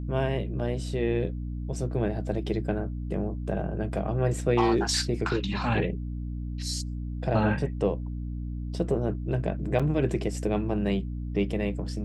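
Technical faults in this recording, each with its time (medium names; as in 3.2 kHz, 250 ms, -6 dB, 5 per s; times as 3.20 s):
hum 60 Hz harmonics 5 -33 dBFS
9.79–9.80 s: dropout 6 ms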